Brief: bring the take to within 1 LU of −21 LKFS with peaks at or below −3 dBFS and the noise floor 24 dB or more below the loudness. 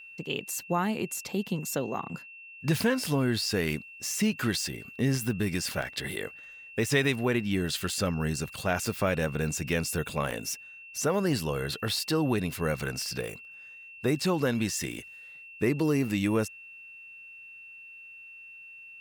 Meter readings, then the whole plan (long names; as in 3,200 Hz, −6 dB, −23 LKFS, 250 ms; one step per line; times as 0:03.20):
number of dropouts 2; longest dropout 4.3 ms; interfering tone 2,700 Hz; level of the tone −45 dBFS; integrated loudness −29.5 LKFS; sample peak −12.0 dBFS; target loudness −21.0 LKFS
→ repair the gap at 0:05.82/0:10.31, 4.3 ms
notch filter 2,700 Hz, Q 30
level +8.5 dB